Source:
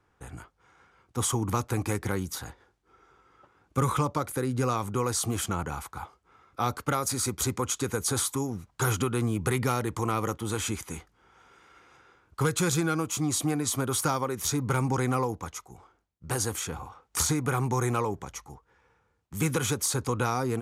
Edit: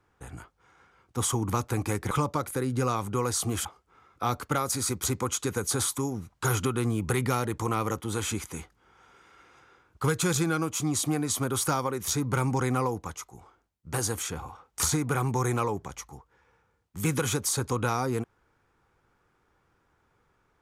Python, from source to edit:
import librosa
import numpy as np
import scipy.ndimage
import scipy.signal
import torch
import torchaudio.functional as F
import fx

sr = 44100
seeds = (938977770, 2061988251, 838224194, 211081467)

y = fx.edit(x, sr, fx.cut(start_s=2.11, length_s=1.81),
    fx.cut(start_s=5.46, length_s=0.56), tone=tone)